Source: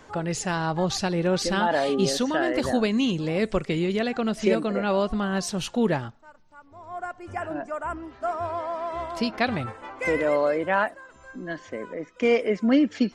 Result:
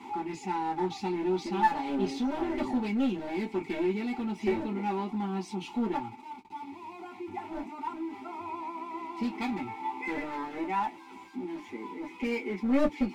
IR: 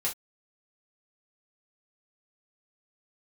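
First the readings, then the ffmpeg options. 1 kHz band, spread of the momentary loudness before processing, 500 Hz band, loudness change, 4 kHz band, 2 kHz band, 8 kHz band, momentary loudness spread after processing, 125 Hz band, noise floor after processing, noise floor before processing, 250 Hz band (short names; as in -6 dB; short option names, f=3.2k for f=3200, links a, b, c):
-3.0 dB, 12 LU, -10.0 dB, -7.0 dB, -13.0 dB, -10.0 dB, under -15 dB, 13 LU, -11.0 dB, -48 dBFS, -53 dBFS, -5.0 dB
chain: -filter_complex "[0:a]aeval=exprs='val(0)+0.5*0.02*sgn(val(0))':c=same,asplit=3[a][b][c];[a]bandpass=f=300:t=q:w=8,volume=0dB[d];[b]bandpass=f=870:t=q:w=8,volume=-6dB[e];[c]bandpass=f=2.24k:t=q:w=8,volume=-9dB[f];[d][e][f]amix=inputs=3:normalize=0,highshelf=f=7.3k:g=8,aeval=exprs='clip(val(0),-1,0.0178)':c=same[g];[1:a]atrim=start_sample=2205,asetrate=79380,aresample=44100[h];[g][h]afir=irnorm=-1:irlink=0,volume=7dB"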